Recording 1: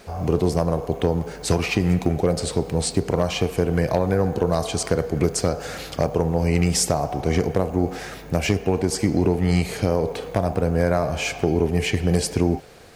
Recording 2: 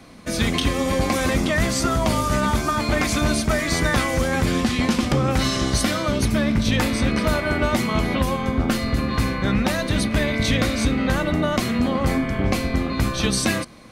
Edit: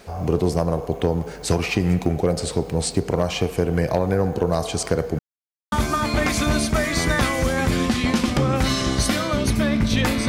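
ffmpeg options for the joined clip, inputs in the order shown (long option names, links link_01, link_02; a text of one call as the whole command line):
ffmpeg -i cue0.wav -i cue1.wav -filter_complex "[0:a]apad=whole_dur=10.28,atrim=end=10.28,asplit=2[link_01][link_02];[link_01]atrim=end=5.19,asetpts=PTS-STARTPTS,afade=type=out:start_time=5.186:duration=0.004:curve=hsin[link_03];[link_02]atrim=start=5.19:end=5.72,asetpts=PTS-STARTPTS,volume=0[link_04];[1:a]atrim=start=2.47:end=7.03,asetpts=PTS-STARTPTS,afade=type=in:duration=0.004:curve=hsin[link_05];[link_03][link_04][link_05]concat=n=3:v=0:a=1" out.wav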